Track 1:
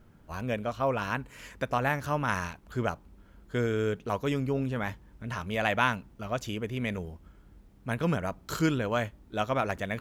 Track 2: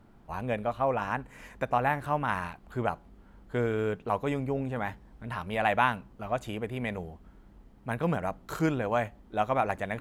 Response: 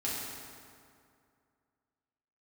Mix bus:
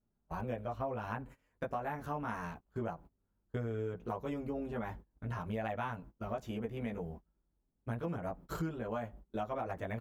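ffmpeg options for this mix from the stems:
-filter_complex "[0:a]flanger=delay=4.8:depth=8.9:regen=-11:speed=0.22:shape=sinusoidal,volume=-0.5dB[link_01];[1:a]lowpass=1300,aeval=exprs='val(0)+0.00112*(sin(2*PI*50*n/s)+sin(2*PI*2*50*n/s)/2+sin(2*PI*3*50*n/s)/3+sin(2*PI*4*50*n/s)/4+sin(2*PI*5*50*n/s)/5)':channel_layout=same,adelay=18,volume=-3dB[link_02];[link_01][link_02]amix=inputs=2:normalize=0,equalizer=frequency=5300:width_type=o:width=2.8:gain=-9,agate=range=-25dB:threshold=-46dB:ratio=16:detection=peak,acompressor=threshold=-35dB:ratio=5"

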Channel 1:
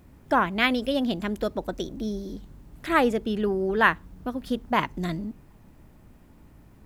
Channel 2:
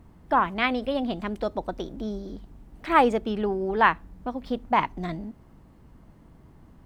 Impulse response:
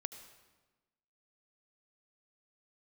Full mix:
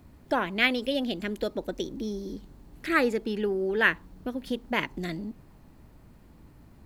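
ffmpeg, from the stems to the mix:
-filter_complex "[0:a]acrossover=split=500[link_01][link_02];[link_01]acompressor=threshold=-31dB:ratio=6[link_03];[link_03][link_02]amix=inputs=2:normalize=0,volume=-2dB[link_04];[1:a]volume=-1,volume=-7.5dB[link_05];[link_04][link_05]amix=inputs=2:normalize=0,equalizer=frequency=4300:width_type=o:width=0.25:gain=5.5"

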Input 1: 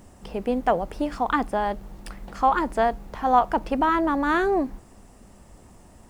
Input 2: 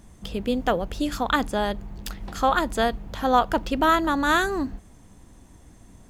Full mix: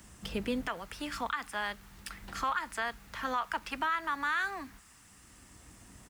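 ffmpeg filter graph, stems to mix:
ffmpeg -i stem1.wav -i stem2.wav -filter_complex "[0:a]highpass=frequency=1300:width=0.5412,highpass=frequency=1300:width=1.3066,volume=2dB,asplit=2[link_01][link_02];[1:a]highpass=44,adelay=4.3,volume=-5dB[link_03];[link_02]apad=whole_len=268856[link_04];[link_03][link_04]sidechaincompress=threshold=-37dB:ratio=12:attack=16:release=1070[link_05];[link_01][link_05]amix=inputs=2:normalize=0,alimiter=limit=-22dB:level=0:latency=1:release=88" out.wav

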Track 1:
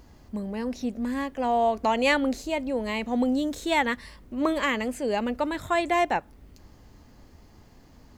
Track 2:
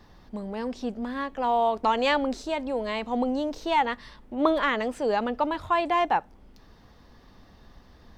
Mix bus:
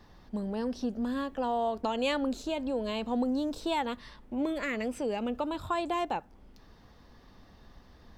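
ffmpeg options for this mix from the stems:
ffmpeg -i stem1.wav -i stem2.wav -filter_complex "[0:a]volume=-10dB[link_01];[1:a]acompressor=threshold=-28dB:ratio=6,volume=-2.5dB,asplit=2[link_02][link_03];[link_03]apad=whole_len=360359[link_04];[link_01][link_04]sidechaingate=range=-33dB:threshold=-43dB:ratio=16:detection=peak[link_05];[link_05][link_02]amix=inputs=2:normalize=0" out.wav

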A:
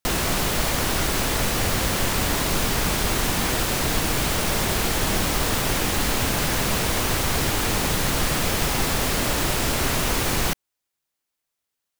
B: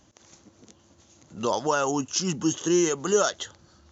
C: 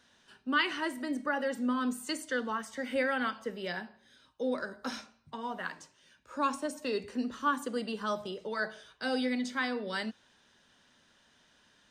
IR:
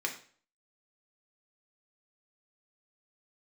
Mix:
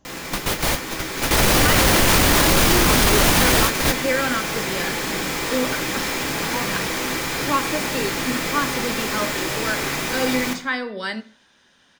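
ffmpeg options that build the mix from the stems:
-filter_complex "[0:a]dynaudnorm=framelen=120:gausssize=21:maxgain=11.5dB,volume=1dB,asplit=2[link_01][link_02];[link_02]volume=-12.5dB[link_03];[1:a]highshelf=frequency=2100:gain=-9,volume=0.5dB,asplit=2[link_04][link_05];[2:a]acontrast=30,adelay=1100,volume=-0.5dB,asplit=2[link_06][link_07];[link_07]volume=-9.5dB[link_08];[link_05]apad=whole_len=529028[link_09];[link_01][link_09]sidechaingate=range=-33dB:threshold=-54dB:ratio=16:detection=peak[link_10];[3:a]atrim=start_sample=2205[link_11];[link_03][link_08]amix=inputs=2:normalize=0[link_12];[link_12][link_11]afir=irnorm=-1:irlink=0[link_13];[link_10][link_04][link_06][link_13]amix=inputs=4:normalize=0,alimiter=limit=-6dB:level=0:latency=1:release=26"

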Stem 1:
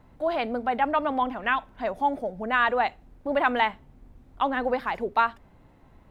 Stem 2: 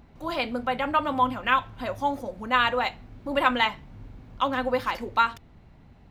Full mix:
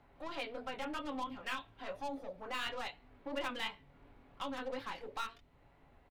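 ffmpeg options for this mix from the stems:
ffmpeg -i stem1.wav -i stem2.wav -filter_complex "[0:a]equalizer=frequency=220:width_type=o:width=0.92:gain=-11.5,aeval=exprs='(tanh(39.8*val(0)+0.6)-tanh(0.6))/39.8':channel_layout=same,volume=-8dB[link_01];[1:a]acrossover=split=330 4000:gain=0.158 1 0.0631[link_02][link_03][link_04];[link_02][link_03][link_04]amix=inputs=3:normalize=0,aecho=1:1:7.1:0.41,flanger=delay=19:depth=4.4:speed=2.9,volume=-1,volume=-4dB[link_05];[link_01][link_05]amix=inputs=2:normalize=0,acrossover=split=380|3000[link_06][link_07][link_08];[link_07]acompressor=threshold=-46dB:ratio=3[link_09];[link_06][link_09][link_08]amix=inputs=3:normalize=0" out.wav

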